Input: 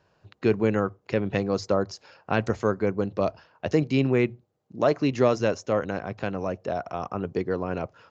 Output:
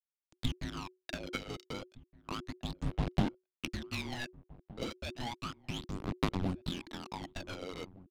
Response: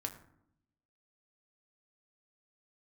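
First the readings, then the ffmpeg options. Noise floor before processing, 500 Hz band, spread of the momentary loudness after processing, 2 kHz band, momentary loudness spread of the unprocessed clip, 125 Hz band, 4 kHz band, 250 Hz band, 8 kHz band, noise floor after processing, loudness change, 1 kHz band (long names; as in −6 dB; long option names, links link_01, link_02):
−70 dBFS, −21.0 dB, 10 LU, −10.0 dB, 9 LU, −9.0 dB, −1.0 dB, −12.5 dB, can't be measured, below −85 dBFS, −13.0 dB, −12.0 dB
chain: -filter_complex "[0:a]agate=range=-33dB:threshold=-48dB:ratio=3:detection=peak,bandreject=frequency=430.5:width_type=h:width=4,bandreject=frequency=861:width_type=h:width=4,bandreject=frequency=1291.5:width_type=h:width=4,bandreject=frequency=1722:width_type=h:width=4,bandreject=frequency=2152.5:width_type=h:width=4,bandreject=frequency=2583:width_type=h:width=4,bandreject=frequency=3013.5:width_type=h:width=4,bandreject=frequency=3444:width_type=h:width=4,bandreject=frequency=3874.5:width_type=h:width=4,bandreject=frequency=4305:width_type=h:width=4,bandreject=frequency=4735.5:width_type=h:width=4,bandreject=frequency=5166:width_type=h:width=4,bandreject=frequency=5596.5:width_type=h:width=4,bandreject=frequency=6027:width_type=h:width=4,bandreject=frequency=6457.5:width_type=h:width=4,bandreject=frequency=6888:width_type=h:width=4,bandreject=frequency=7318.5:width_type=h:width=4,bandreject=frequency=7749:width_type=h:width=4,bandreject=frequency=8179.5:width_type=h:width=4,bandreject=frequency=8610:width_type=h:width=4,bandreject=frequency=9040.5:width_type=h:width=4,bandreject=frequency=9471:width_type=h:width=4,bandreject=frequency=9901.5:width_type=h:width=4,bandreject=frequency=10332:width_type=h:width=4,bandreject=frequency=10762.5:width_type=h:width=4,bandreject=frequency=11193:width_type=h:width=4,bandreject=frequency=11623.5:width_type=h:width=4,bandreject=frequency=12054:width_type=h:width=4,bandreject=frequency=12484.5:width_type=h:width=4,bandreject=frequency=12915:width_type=h:width=4,bandreject=frequency=13345.5:width_type=h:width=4,bandreject=frequency=13776:width_type=h:width=4,bandreject=frequency=14206.5:width_type=h:width=4,bandreject=frequency=14637:width_type=h:width=4,bandreject=frequency=15067.5:width_type=h:width=4,bandreject=frequency=15498:width_type=h:width=4,aeval=exprs='sgn(val(0))*max(abs(val(0))-0.0168,0)':channel_layout=same,equalizer=frequency=160:width=0.62:gain=-9,acompressor=threshold=-38dB:ratio=12,acrusher=bits=6:mix=0:aa=0.000001,highshelf=frequency=2900:width_type=q:width=1.5:gain=8,aphaser=in_gain=1:out_gain=1:delay=1.2:decay=0.75:speed=0.32:type=sinusoidal,afreqshift=-370,adynamicsmooth=sensitivity=4.5:basefreq=1700,asplit=2[link_01][link_02];[link_02]adelay=1516,volume=-21dB,highshelf=frequency=4000:gain=-34.1[link_03];[link_01][link_03]amix=inputs=2:normalize=0,volume=1dB"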